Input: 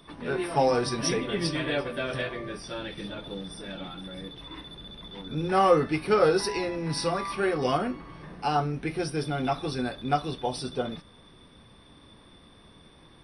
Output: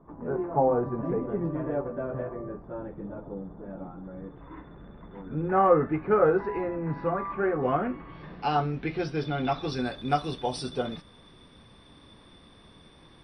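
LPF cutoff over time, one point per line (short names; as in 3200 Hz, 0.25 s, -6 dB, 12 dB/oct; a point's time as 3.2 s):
LPF 24 dB/oct
3.95 s 1100 Hz
4.52 s 1700 Hz
7.6 s 1700 Hz
8.05 s 2800 Hz
8.21 s 4400 Hz
9.44 s 4400 Hz
10.02 s 9500 Hz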